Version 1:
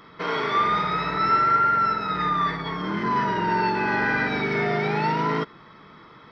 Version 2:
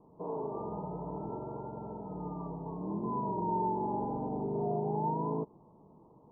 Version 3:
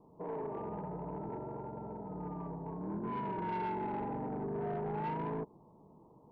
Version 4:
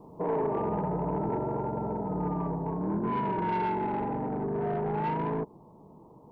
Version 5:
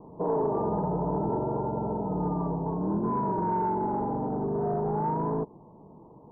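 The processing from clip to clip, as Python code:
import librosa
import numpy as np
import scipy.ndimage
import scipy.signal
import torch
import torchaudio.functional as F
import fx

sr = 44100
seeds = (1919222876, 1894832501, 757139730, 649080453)

y1 = scipy.signal.sosfilt(scipy.signal.butter(12, 960.0, 'lowpass', fs=sr, output='sos'), x)
y1 = y1 * 10.0 ** (-7.5 / 20.0)
y2 = 10.0 ** (-31.0 / 20.0) * np.tanh(y1 / 10.0 ** (-31.0 / 20.0))
y2 = y2 * 10.0 ** (-1.0 / 20.0)
y3 = fx.rider(y2, sr, range_db=10, speed_s=2.0)
y3 = y3 * 10.0 ** (8.5 / 20.0)
y4 = scipy.signal.sosfilt(scipy.signal.butter(4, 1200.0, 'lowpass', fs=sr, output='sos'), y3)
y4 = y4 * 10.0 ** (2.0 / 20.0)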